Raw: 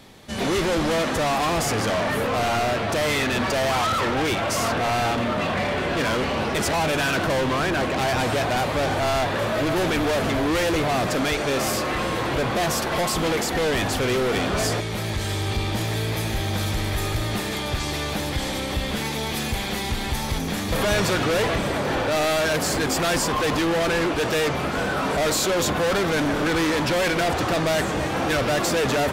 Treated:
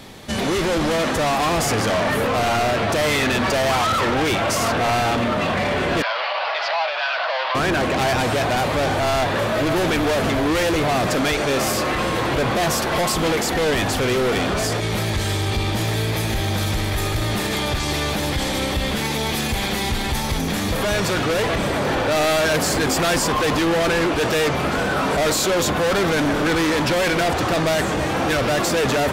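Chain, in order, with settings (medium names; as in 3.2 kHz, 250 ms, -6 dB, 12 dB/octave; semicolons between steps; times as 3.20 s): 6.02–7.55 s: Chebyshev band-pass 610–4800 Hz, order 4; peak limiter -22 dBFS, peak gain reduction 8.5 dB; trim +7.5 dB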